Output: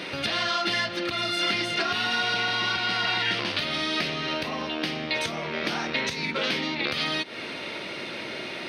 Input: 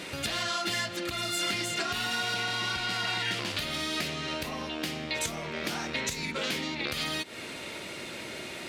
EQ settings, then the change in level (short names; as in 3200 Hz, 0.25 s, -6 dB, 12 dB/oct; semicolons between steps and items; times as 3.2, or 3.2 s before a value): polynomial smoothing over 15 samples; HPF 96 Hz; low shelf 130 Hz -5.5 dB; +5.5 dB